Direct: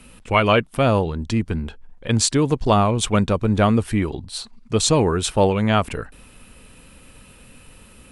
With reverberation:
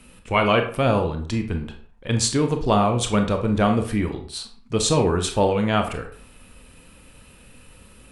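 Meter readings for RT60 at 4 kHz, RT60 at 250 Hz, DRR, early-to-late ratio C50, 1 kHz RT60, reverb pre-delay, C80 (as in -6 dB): 0.35 s, 0.45 s, 5.5 dB, 9.5 dB, 0.50 s, 24 ms, 13.5 dB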